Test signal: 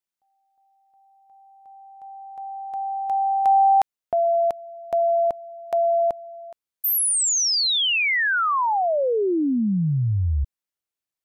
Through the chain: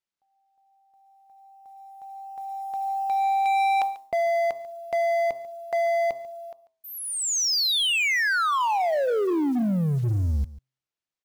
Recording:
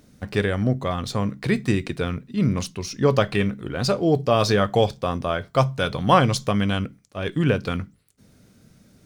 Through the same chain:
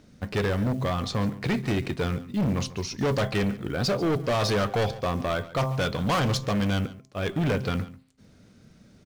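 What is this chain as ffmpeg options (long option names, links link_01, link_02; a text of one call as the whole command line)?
ffmpeg -i in.wav -af "lowpass=6100,bandreject=frequency=131:width_type=h:width=4,bandreject=frequency=262:width_type=h:width=4,bandreject=frequency=393:width_type=h:width=4,bandreject=frequency=524:width_type=h:width=4,bandreject=frequency=655:width_type=h:width=4,bandreject=frequency=786:width_type=h:width=4,bandreject=frequency=917:width_type=h:width=4,bandreject=frequency=1048:width_type=h:width=4,bandreject=frequency=1179:width_type=h:width=4,acrusher=bits=7:mode=log:mix=0:aa=0.000001,volume=21.5dB,asoftclip=hard,volume=-21.5dB,aecho=1:1:142:0.126" out.wav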